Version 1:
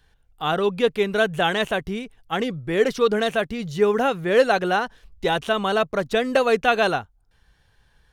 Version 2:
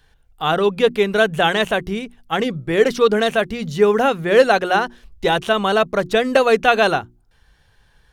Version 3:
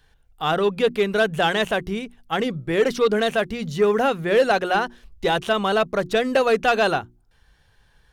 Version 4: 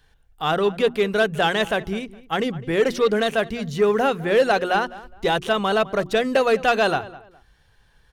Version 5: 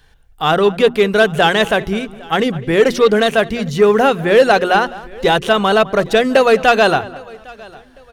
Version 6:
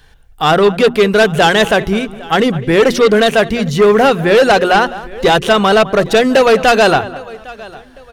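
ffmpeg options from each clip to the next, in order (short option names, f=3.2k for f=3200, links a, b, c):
-af "bandreject=f=60:t=h:w=6,bandreject=f=120:t=h:w=6,bandreject=f=180:t=h:w=6,bandreject=f=240:t=h:w=6,bandreject=f=300:t=h:w=6,bandreject=f=360:t=h:w=6,volume=4.5dB"
-af "asoftclip=type=tanh:threshold=-7dB,volume=-2.5dB"
-filter_complex "[0:a]asplit=2[a][b];[b]adelay=207,lowpass=f=2.4k:p=1,volume=-18dB,asplit=2[c][d];[d]adelay=207,lowpass=f=2.4k:p=1,volume=0.26[e];[a][c][e]amix=inputs=3:normalize=0"
-af "aecho=1:1:806|1612:0.0631|0.0227,volume=7.5dB"
-af "aeval=exprs='0.841*sin(PI/2*1.58*val(0)/0.841)':c=same,volume=-3dB"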